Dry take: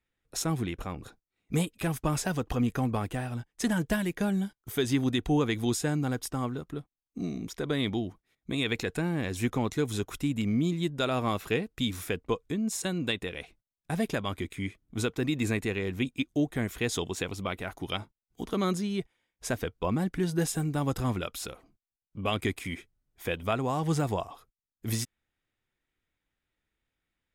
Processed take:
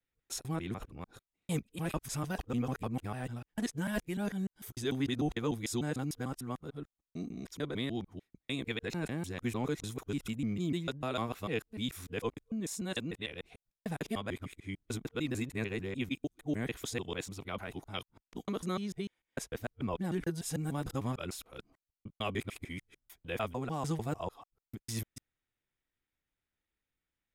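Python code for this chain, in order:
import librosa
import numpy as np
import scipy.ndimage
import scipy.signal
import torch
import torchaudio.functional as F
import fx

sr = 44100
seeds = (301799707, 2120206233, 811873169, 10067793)

y = fx.local_reverse(x, sr, ms=149.0)
y = F.gain(torch.from_numpy(y), -6.5).numpy()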